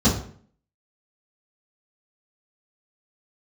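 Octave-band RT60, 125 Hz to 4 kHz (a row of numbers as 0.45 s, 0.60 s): 0.60 s, 0.60 s, 0.55 s, 0.50 s, 0.50 s, 0.40 s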